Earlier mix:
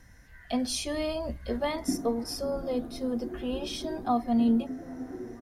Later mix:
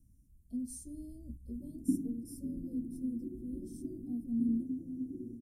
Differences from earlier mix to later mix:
speech -8.0 dB; master: add elliptic band-stop 280–8400 Hz, stop band 70 dB

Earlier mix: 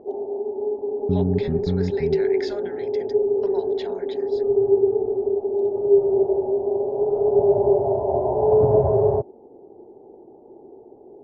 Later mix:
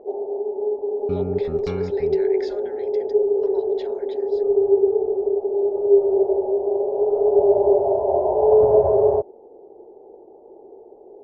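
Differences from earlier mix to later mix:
speech -5.5 dB; second sound: remove running mean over 48 samples; master: add graphic EQ 125/250/500 Hz -11/-7/+6 dB

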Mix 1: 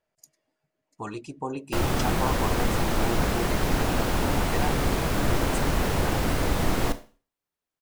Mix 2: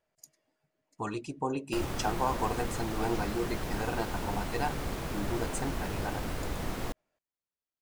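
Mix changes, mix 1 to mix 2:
background -8.5 dB; reverb: off

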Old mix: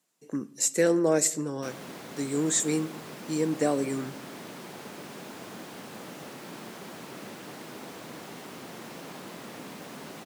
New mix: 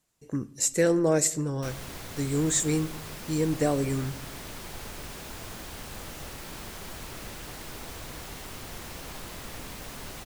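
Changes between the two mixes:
background: add tilt +2 dB/oct; master: remove HPF 180 Hz 24 dB/oct

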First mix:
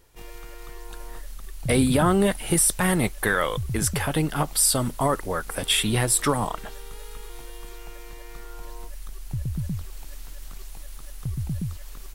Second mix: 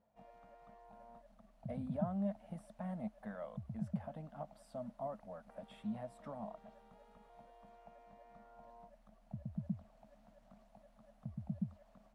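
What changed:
speech -11.0 dB; master: add double band-pass 370 Hz, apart 1.6 oct

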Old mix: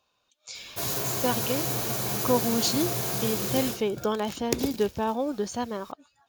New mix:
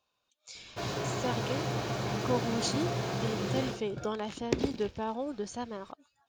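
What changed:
speech -7.0 dB; background: add air absorption 170 m

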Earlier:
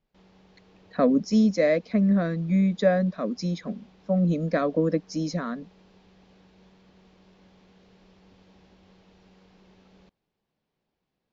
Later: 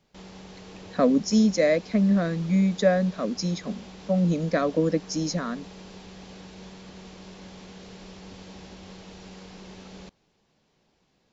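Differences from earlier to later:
background +12.0 dB; master: remove air absorption 130 m

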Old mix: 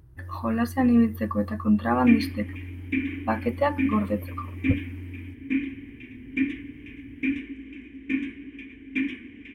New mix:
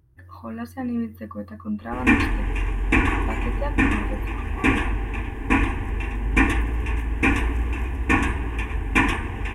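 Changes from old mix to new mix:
speech -7.5 dB; background: remove vowel filter i

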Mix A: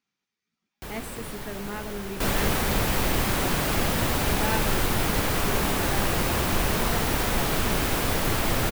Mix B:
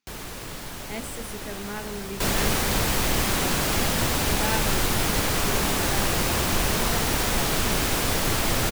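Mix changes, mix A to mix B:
first sound: entry -0.75 s; master: add bell 6400 Hz +5.5 dB 1.9 oct

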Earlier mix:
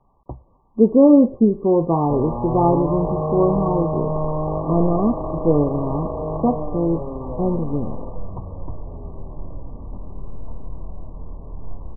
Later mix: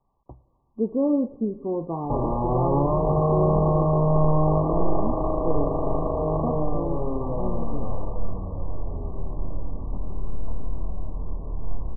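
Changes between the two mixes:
speech -11.5 dB; reverb: on, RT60 1.9 s

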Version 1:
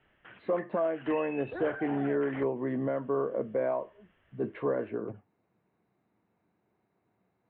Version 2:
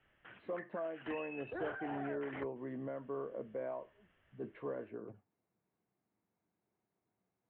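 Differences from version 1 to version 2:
speech -11.5 dB; background -4.0 dB

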